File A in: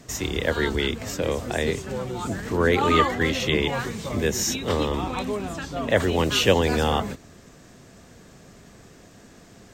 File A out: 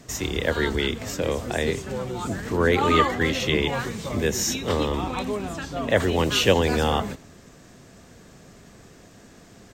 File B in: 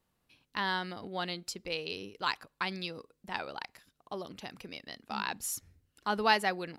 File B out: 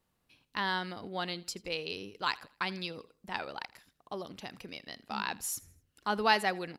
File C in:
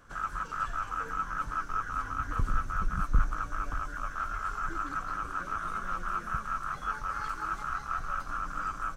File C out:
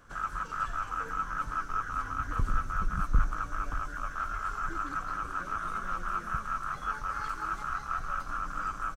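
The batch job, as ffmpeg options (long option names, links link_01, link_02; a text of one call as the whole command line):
ffmpeg -i in.wav -af "aecho=1:1:81|162|243:0.0794|0.031|0.0121" out.wav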